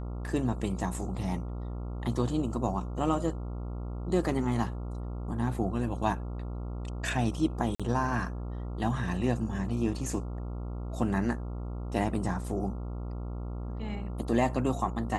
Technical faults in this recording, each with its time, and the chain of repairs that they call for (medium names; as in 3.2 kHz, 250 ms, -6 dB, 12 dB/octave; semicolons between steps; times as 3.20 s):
buzz 60 Hz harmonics 23 -36 dBFS
7.75–7.80 s: dropout 46 ms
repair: de-hum 60 Hz, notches 23; interpolate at 7.75 s, 46 ms